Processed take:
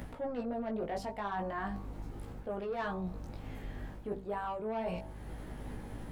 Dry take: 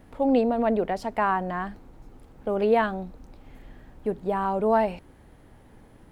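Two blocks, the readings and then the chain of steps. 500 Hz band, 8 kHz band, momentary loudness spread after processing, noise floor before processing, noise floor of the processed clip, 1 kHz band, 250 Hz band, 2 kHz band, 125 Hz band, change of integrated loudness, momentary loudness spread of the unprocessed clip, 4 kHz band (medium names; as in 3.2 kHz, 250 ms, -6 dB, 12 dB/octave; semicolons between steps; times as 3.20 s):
-13.0 dB, no reading, 9 LU, -53 dBFS, -48 dBFS, -12.5 dB, -12.0 dB, -10.5 dB, -4.0 dB, -14.0 dB, 14 LU, -8.0 dB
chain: de-hum 65.02 Hz, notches 19; in parallel at -1.5 dB: upward compressor, threshold -26 dBFS; on the sum: saturation -12.5 dBFS, distortion -16 dB; chorus 0.37 Hz, delay 16 ms, depth 4 ms; hum 50 Hz, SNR 17 dB; reverse; compression 10:1, threshold -30 dBFS, peak gain reduction 13.5 dB; reverse; trim -3.5 dB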